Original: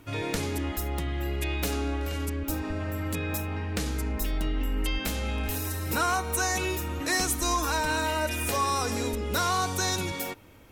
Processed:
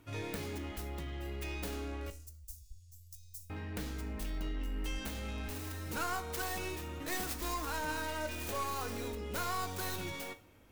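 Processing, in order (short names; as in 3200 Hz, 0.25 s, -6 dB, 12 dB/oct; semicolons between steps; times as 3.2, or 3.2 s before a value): tracing distortion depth 0.34 ms; 2.1–3.5 inverse Chebyshev band-stop 280–1300 Hz, stop band 80 dB; in parallel at -6.5 dB: hard clip -27.5 dBFS, distortion -11 dB; on the sum: resonator 51 Hz, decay 0.29 s, harmonics all, mix 60%; reverb RT60 0.75 s, pre-delay 57 ms, DRR 20.5 dB; gain -8.5 dB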